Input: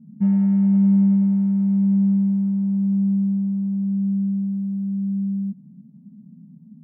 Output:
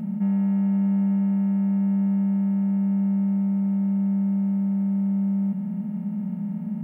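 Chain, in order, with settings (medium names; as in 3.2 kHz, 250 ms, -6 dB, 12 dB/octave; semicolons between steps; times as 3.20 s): spectral levelling over time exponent 0.2; bass shelf 220 Hz -11.5 dB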